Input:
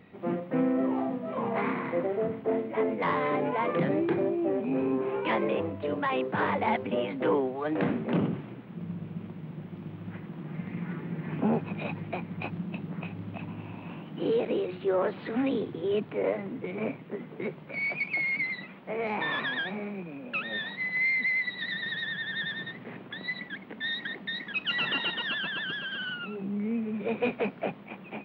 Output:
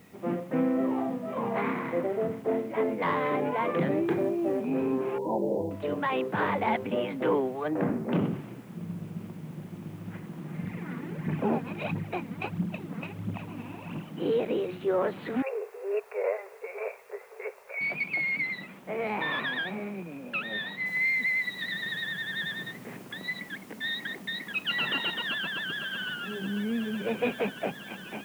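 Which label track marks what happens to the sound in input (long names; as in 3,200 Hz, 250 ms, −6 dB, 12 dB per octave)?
4.050000	4.650000	log-companded quantiser 8 bits
5.180000	5.710000	linear-phase brick-wall low-pass 1,000 Hz
7.680000	8.120000	low-pass filter 1,500 Hz
10.630000	14.110000	phase shifter 1.5 Hz, delay 4.5 ms, feedback 57%
15.420000	17.810000	linear-phase brick-wall band-pass 390–2,800 Hz
20.860000	20.860000	noise floor change −65 dB −57 dB
25.250000	26.120000	delay throw 500 ms, feedback 85%, level −10.5 dB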